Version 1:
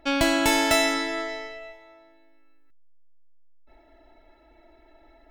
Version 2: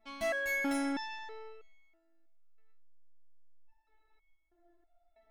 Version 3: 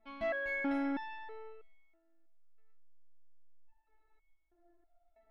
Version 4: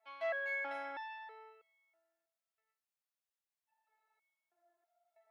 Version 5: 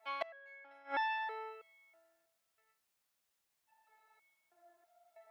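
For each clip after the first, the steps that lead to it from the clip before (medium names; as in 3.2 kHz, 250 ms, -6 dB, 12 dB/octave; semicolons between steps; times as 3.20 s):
resonator arpeggio 3.1 Hz 220–1100 Hz; trim -2.5 dB
distance through air 370 m
high-pass 560 Hz 24 dB/octave; trim -1 dB
inverted gate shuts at -35 dBFS, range -28 dB; trim +10.5 dB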